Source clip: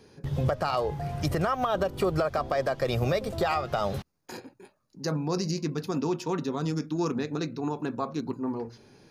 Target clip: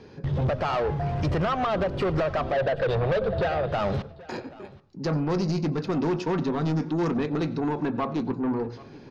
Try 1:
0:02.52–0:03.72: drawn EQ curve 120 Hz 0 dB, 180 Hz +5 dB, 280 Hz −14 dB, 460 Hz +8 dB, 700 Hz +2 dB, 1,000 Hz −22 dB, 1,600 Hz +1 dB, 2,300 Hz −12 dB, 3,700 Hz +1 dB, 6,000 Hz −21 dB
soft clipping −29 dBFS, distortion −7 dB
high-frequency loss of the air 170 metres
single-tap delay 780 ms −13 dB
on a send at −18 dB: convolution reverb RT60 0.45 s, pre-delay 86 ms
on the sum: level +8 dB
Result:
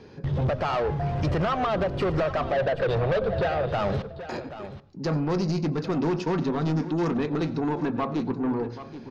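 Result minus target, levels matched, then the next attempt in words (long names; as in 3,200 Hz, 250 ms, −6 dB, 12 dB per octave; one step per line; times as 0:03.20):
echo-to-direct +4.5 dB
0:02.52–0:03.72: drawn EQ curve 120 Hz 0 dB, 180 Hz +5 dB, 280 Hz −14 dB, 460 Hz +8 dB, 700 Hz +2 dB, 1,000 Hz −22 dB, 1,600 Hz +1 dB, 2,300 Hz −12 dB, 3,700 Hz +1 dB, 6,000 Hz −21 dB
soft clipping −29 dBFS, distortion −7 dB
high-frequency loss of the air 170 metres
single-tap delay 780 ms −21 dB
on a send at −18 dB: convolution reverb RT60 0.45 s, pre-delay 86 ms
on the sum: level +8 dB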